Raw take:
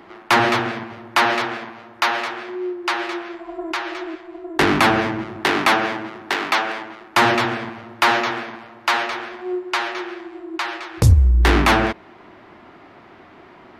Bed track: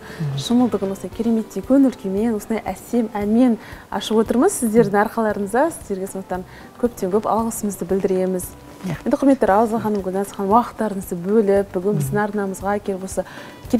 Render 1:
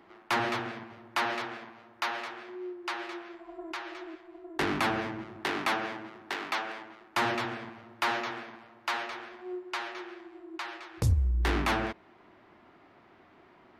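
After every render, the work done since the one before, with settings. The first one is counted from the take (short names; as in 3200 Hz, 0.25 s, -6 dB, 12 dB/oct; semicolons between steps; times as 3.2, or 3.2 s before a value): gain -13 dB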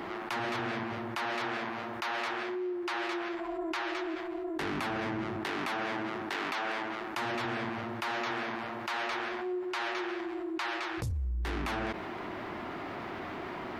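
limiter -29 dBFS, peak gain reduction 12 dB; fast leveller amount 70%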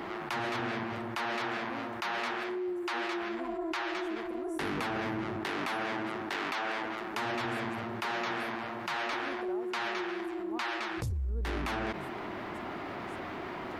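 add bed track -31 dB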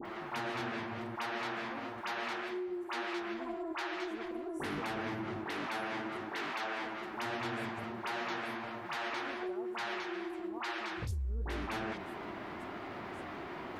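flange 0.93 Hz, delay 7.8 ms, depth 7.4 ms, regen -50%; dispersion highs, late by 56 ms, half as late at 1700 Hz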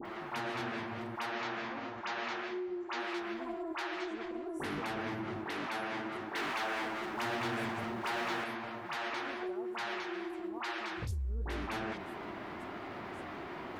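1.32–3 steep low-pass 7200 Hz 72 dB/oct; 4–4.46 steep low-pass 8400 Hz; 6.35–8.44 G.711 law mismatch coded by mu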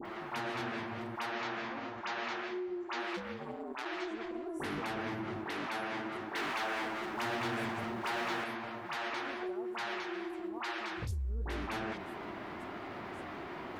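3.16–3.84 ring modulator 160 Hz -> 60 Hz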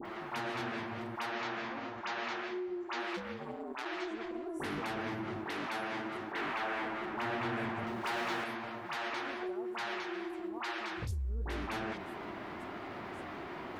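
6.32–7.87 tone controls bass +1 dB, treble -12 dB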